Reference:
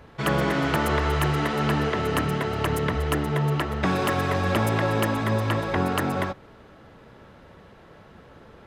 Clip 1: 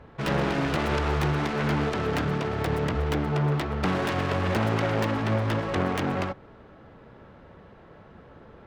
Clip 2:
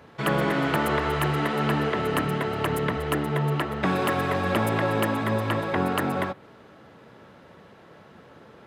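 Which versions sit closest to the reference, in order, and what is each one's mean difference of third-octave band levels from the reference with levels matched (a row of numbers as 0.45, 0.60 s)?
2, 1; 1.0, 2.5 dB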